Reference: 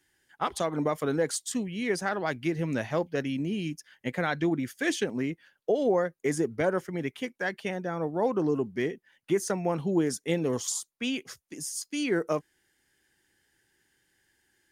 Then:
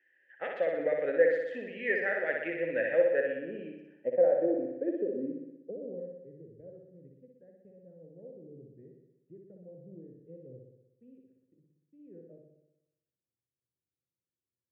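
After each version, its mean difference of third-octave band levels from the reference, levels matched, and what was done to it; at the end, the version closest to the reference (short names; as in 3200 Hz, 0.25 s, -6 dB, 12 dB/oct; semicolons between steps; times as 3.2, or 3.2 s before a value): 15.0 dB: notches 50/100/150 Hz; low-pass sweep 2000 Hz -> 120 Hz, 2.88–6.26; vowel filter e; on a send: flutter echo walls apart 10.5 m, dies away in 0.94 s; on the sum: gain +6 dB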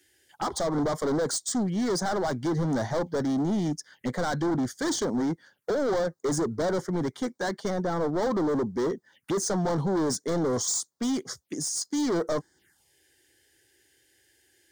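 6.0 dB: HPF 64 Hz 12 dB/oct; dynamic EQ 940 Hz, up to +4 dB, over -39 dBFS, Q 1.4; hard clip -32 dBFS, distortion -4 dB; envelope phaser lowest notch 160 Hz, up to 2600 Hz, full sweep at -43 dBFS; gain +8.5 dB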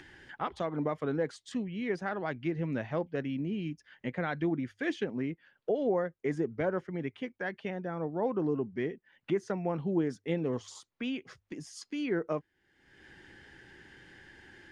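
4.0 dB: LPF 3000 Hz 12 dB/oct; low shelf 320 Hz +3.5 dB; notches 50/100 Hz; upward compressor, threshold -29 dBFS; gain -5.5 dB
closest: third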